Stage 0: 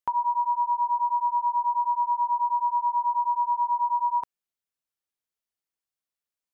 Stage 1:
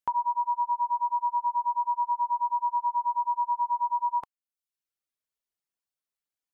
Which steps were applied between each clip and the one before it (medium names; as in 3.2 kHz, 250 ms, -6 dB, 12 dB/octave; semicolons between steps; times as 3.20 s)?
reverb removal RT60 0.66 s; trim -1 dB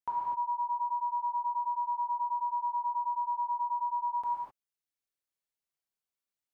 gated-style reverb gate 280 ms flat, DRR -6 dB; trim -9 dB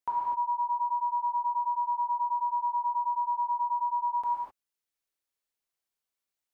peaking EQ 140 Hz -6.5 dB 0.93 oct; trim +3 dB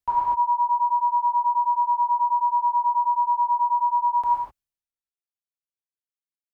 three bands expanded up and down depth 100%; trim +8 dB